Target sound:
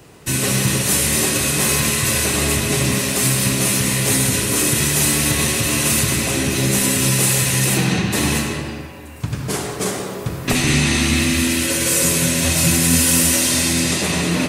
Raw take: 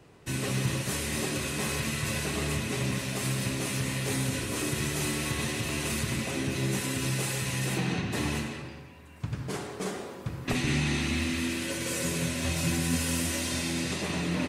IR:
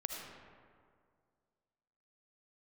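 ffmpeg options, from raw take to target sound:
-filter_complex "[0:a]highshelf=f=6400:g=12,asplit=2[s0][s1];[1:a]atrim=start_sample=2205[s2];[s1][s2]afir=irnorm=-1:irlink=0,volume=1.12[s3];[s0][s3]amix=inputs=2:normalize=0,volume=1.68"

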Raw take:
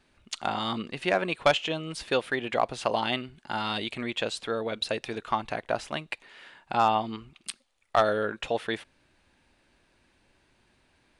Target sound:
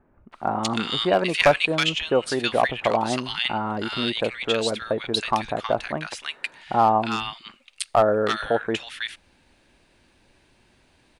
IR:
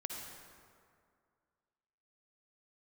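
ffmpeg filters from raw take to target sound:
-filter_complex "[0:a]acrossover=split=1400[s0][s1];[s1]adelay=320[s2];[s0][s2]amix=inputs=2:normalize=0,asoftclip=type=hard:threshold=0.168,asettb=1/sr,asplit=3[s3][s4][s5];[s3]atrim=end=0.684[s6];[s4]atrim=start=0.68:end=1.67,asetpts=PTS-STARTPTS,afade=t=in:d=0.004:c=qsin,afade=t=out:st=0.986:d=0.004:c=qsin,adynamicequalizer=threshold=0.0126:dfrequency=1700:dqfactor=0.7:tfrequency=1700:tqfactor=0.7:attack=5:release=100:ratio=0.375:range=3:mode=boostabove:tftype=highshelf[s7];[s5]atrim=start=1.666[s8];[s6][s7]acrossfade=d=0.004:c1=hsin:c2=qsin[s9];[s9][s8]acrossfade=d=0.004:c1=qsin:c2=hsin,volume=2.11"

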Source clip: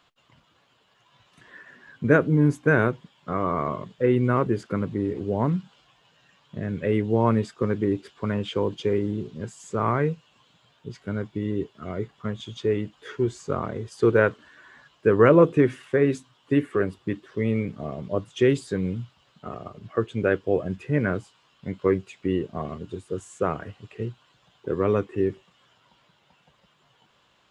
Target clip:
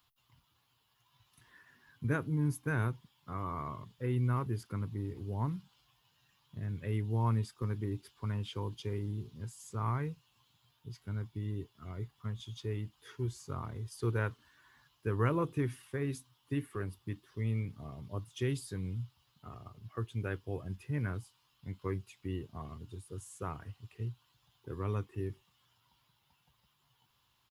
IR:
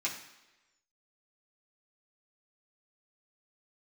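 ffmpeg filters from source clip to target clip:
-af "firequalizer=gain_entry='entry(120,0);entry(170,-11);entry(250,-10);entry(570,-18);entry(890,-6);entry(1500,-11);entry(5100,-1);entry(7600,-5);entry(11000,14)':delay=0.05:min_phase=1,volume=0.631"

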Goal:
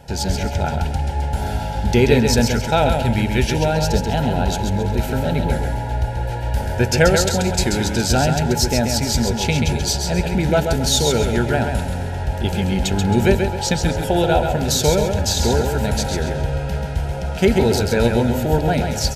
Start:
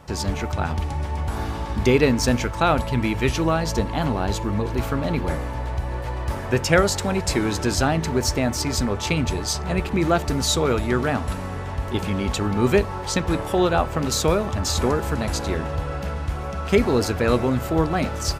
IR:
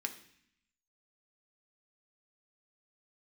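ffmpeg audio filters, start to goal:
-af "asuperstop=centerf=1200:order=8:qfactor=3.1,asetrate=42336,aresample=44100,equalizer=f=315:t=o:w=0.33:g=-9,equalizer=f=2000:t=o:w=0.33:g=-6,equalizer=f=12500:t=o:w=0.33:g=3,aecho=1:1:134|268|402|536:0.531|0.175|0.0578|0.0191,volume=1.58"

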